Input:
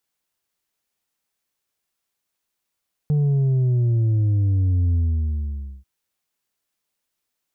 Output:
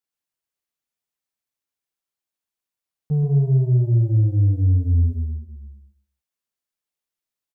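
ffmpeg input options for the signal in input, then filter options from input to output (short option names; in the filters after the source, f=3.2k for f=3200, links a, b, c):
-f lavfi -i "aevalsrc='0.15*clip((2.74-t)/0.9,0,1)*tanh(1.58*sin(2*PI*150*2.74/log(65/150)*(exp(log(65/150)*t/2.74)-1)))/tanh(1.58)':d=2.74:s=44100"
-filter_complex "[0:a]agate=range=-11dB:threshold=-22dB:ratio=16:detection=peak,asplit=2[a][b];[b]aecho=0:1:128|256|384:0.668|0.147|0.0323[c];[a][c]amix=inputs=2:normalize=0"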